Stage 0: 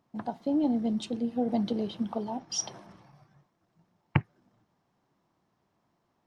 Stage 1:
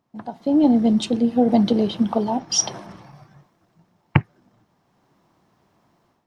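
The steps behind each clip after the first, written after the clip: AGC gain up to 12 dB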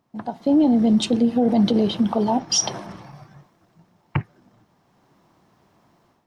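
limiter -13.5 dBFS, peak gain reduction 11 dB; gain +3 dB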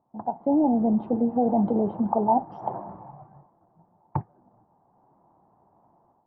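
ladder low-pass 960 Hz, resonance 60%; gain +4.5 dB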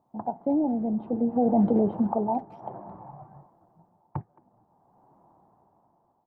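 dynamic EQ 930 Hz, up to -5 dB, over -37 dBFS, Q 1.8; tremolo 0.58 Hz, depth 57%; speakerphone echo 0.22 s, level -23 dB; gain +2 dB

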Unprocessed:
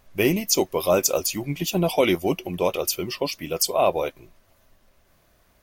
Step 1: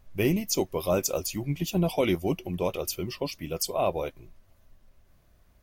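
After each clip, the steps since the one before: low shelf 190 Hz +12 dB; gain -7.5 dB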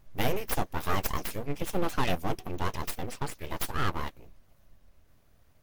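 full-wave rectifier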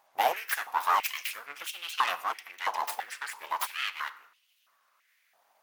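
on a send at -14 dB: reverb RT60 0.80 s, pre-delay 29 ms; on the sum: stepped high-pass 3 Hz 810–2900 Hz

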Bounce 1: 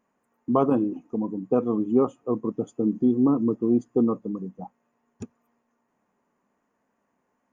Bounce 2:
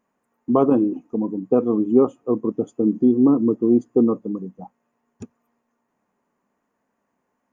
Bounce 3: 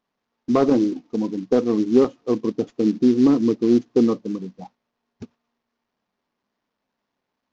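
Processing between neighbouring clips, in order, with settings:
dynamic EQ 350 Hz, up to +6 dB, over -34 dBFS, Q 0.8
CVSD 32 kbps; gate -47 dBFS, range -7 dB

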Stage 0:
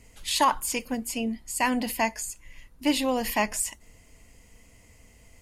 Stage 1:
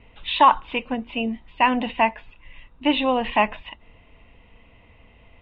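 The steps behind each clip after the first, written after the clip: rippled Chebyshev low-pass 3800 Hz, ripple 6 dB; gain +8.5 dB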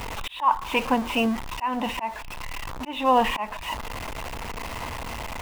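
zero-crossing step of -30 dBFS; auto swell 0.403 s; bell 970 Hz +10 dB 0.96 oct

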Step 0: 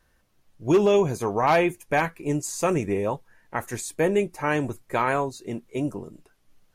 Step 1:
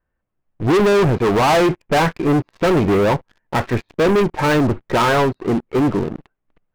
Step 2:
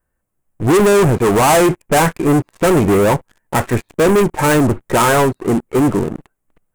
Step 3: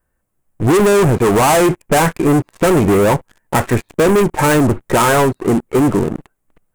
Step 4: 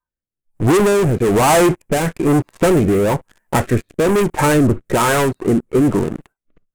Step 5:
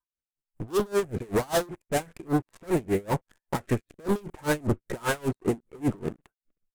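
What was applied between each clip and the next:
Bessel low-pass 1700 Hz, order 8; sample leveller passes 5
resonant high shelf 6300 Hz +10.5 dB, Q 1.5; gain +3 dB
compressor, threshold -13 dBFS, peak gain reduction 4 dB; gain +3 dB
rotary speaker horn 1.1 Hz; spectral noise reduction 19 dB
hard clip -12.5 dBFS, distortion -14 dB; dB-linear tremolo 5.1 Hz, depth 28 dB; gain -5.5 dB

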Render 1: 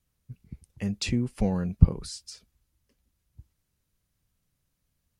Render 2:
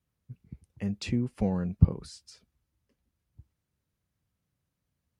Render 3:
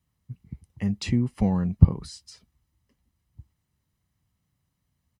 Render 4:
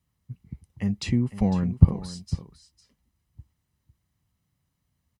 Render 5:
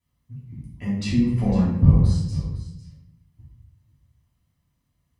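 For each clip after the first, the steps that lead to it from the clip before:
HPF 65 Hz; high shelf 3100 Hz -9 dB; gain -1.5 dB
comb 1 ms, depth 39%; in parallel at -8 dB: hard clip -12 dBFS, distortion -10 dB; on the sum: gain +1 dB
echo 0.503 s -14 dB
shoebox room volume 190 m³, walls mixed, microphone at 3 m; gain -7.5 dB

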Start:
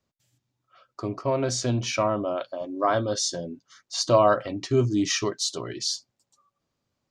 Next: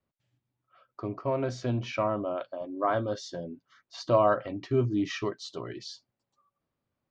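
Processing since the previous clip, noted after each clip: LPF 2700 Hz 12 dB/oct; gain -4 dB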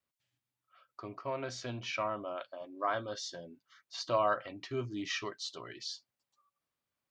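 tilt shelf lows -7.5 dB, about 870 Hz; gain -5.5 dB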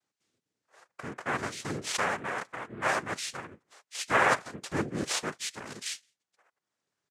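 outdoor echo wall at 29 m, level -28 dB; transient shaper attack -2 dB, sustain -6 dB; noise vocoder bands 3; gain +6 dB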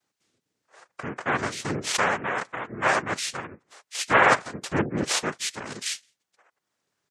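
spectral gate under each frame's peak -30 dB strong; Doppler distortion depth 0.3 ms; gain +6 dB

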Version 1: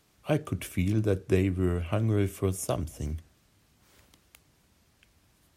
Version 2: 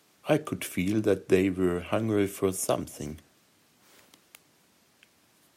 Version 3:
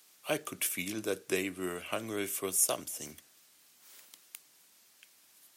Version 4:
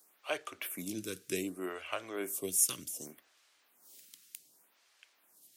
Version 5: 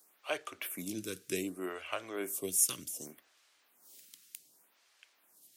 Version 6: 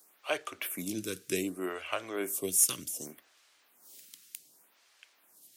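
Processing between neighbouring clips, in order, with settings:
HPF 210 Hz 12 dB/oct; gain +4 dB
tilt +3.5 dB/oct; gain -5.5 dB
photocell phaser 0.66 Hz
nothing audible
overloaded stage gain 18 dB; gain +3.5 dB

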